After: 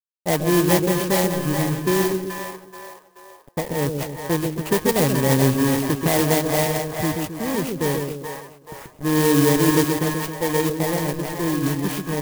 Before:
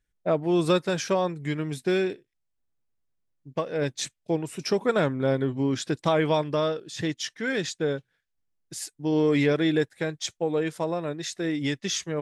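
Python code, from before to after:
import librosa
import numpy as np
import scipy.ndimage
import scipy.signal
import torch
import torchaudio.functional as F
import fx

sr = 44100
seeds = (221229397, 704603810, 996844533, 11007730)

y = fx.bit_reversed(x, sr, seeds[0], block=32)
y = fx.quant_dither(y, sr, seeds[1], bits=6, dither='none')
y = fx.low_shelf(y, sr, hz=150.0, db=6.0)
y = fx.echo_split(y, sr, split_hz=580.0, low_ms=134, high_ms=430, feedback_pct=52, wet_db=-4)
y = fx.env_lowpass(y, sr, base_hz=1100.0, full_db=-16.5)
y = fx.clock_jitter(y, sr, seeds[2], jitter_ms=0.064)
y = F.gain(torch.from_numpy(y), 4.0).numpy()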